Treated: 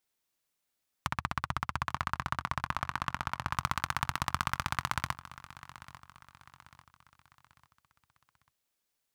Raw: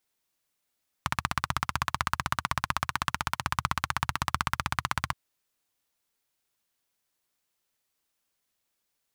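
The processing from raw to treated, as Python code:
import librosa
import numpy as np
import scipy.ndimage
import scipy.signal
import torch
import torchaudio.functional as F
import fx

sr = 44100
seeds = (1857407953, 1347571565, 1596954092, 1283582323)

y = fx.high_shelf(x, sr, hz=3700.0, db=-11.0, at=(1.07, 3.53))
y = fx.echo_feedback(y, sr, ms=844, feedback_pct=44, wet_db=-17.0)
y = y * 10.0 ** (-3.0 / 20.0)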